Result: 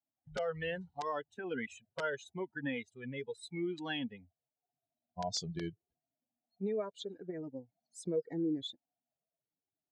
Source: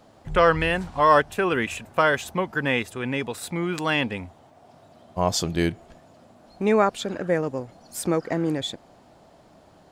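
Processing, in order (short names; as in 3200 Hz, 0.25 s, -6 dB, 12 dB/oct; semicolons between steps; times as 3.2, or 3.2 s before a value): per-bin expansion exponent 2; compressor 10:1, threshold -25 dBFS, peak gain reduction 12 dB; bell 1900 Hz -2.5 dB 2 oct; wrapped overs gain 19 dB; speaker cabinet 180–6400 Hz, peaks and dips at 460 Hz +7 dB, 1100 Hz -9 dB, 2500 Hz -7 dB; limiter -23 dBFS, peak gain reduction 6.5 dB; cascading flanger falling 0.81 Hz; gain +1 dB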